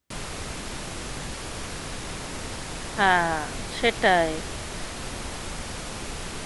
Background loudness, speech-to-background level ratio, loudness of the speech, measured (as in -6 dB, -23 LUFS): -34.0 LUFS, 11.0 dB, -23.0 LUFS